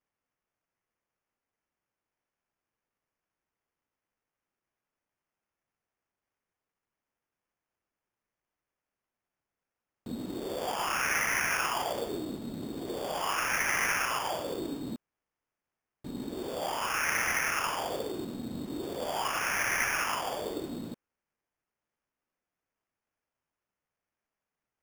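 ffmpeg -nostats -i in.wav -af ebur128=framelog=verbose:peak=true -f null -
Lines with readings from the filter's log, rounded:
Integrated loudness:
  I:         -31.3 LUFS
  Threshold: -41.5 LUFS
Loudness range:
  LRA:        10.2 LU
  Threshold: -52.7 LUFS
  LRA low:   -40.7 LUFS
  LRA high:  -30.5 LUFS
True peak:
  Peak:      -15.3 dBFS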